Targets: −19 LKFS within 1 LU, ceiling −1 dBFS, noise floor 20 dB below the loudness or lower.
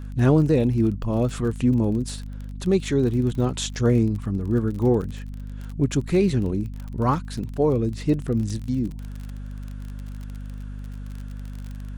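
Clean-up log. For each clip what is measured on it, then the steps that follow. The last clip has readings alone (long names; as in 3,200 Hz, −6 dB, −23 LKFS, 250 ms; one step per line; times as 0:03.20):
crackle rate 34 per second; mains hum 50 Hz; hum harmonics up to 250 Hz; level of the hum −31 dBFS; integrated loudness −23.0 LKFS; sample peak −6.5 dBFS; target loudness −19.0 LKFS
→ click removal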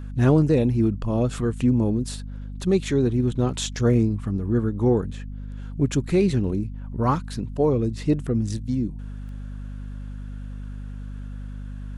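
crackle rate 0.083 per second; mains hum 50 Hz; hum harmonics up to 250 Hz; level of the hum −31 dBFS
→ mains-hum notches 50/100/150/200/250 Hz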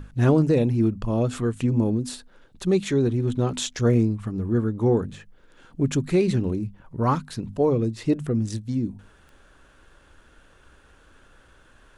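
mains hum none found; integrated loudness −24.0 LKFS; sample peak −7.0 dBFS; target loudness −19.0 LKFS
→ level +5 dB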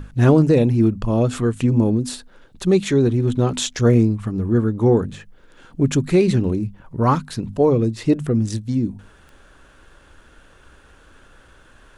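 integrated loudness −19.0 LKFS; sample peak −2.0 dBFS; background noise floor −50 dBFS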